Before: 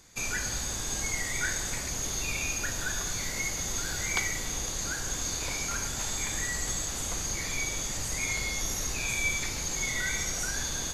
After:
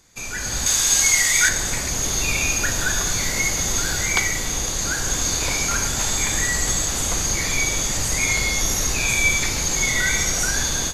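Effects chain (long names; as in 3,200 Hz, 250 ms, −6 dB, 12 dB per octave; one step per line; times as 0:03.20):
0:00.66–0:01.49: tilt shelving filter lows −7.5 dB
automatic gain control gain up to 10.5 dB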